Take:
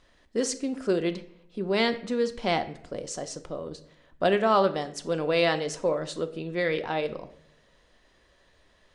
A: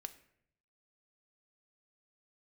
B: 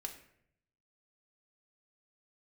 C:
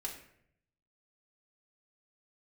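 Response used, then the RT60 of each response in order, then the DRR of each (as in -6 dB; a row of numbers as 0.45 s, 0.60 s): A; 0.70 s, 0.70 s, 0.70 s; 8.5 dB, 2.0 dB, -3.0 dB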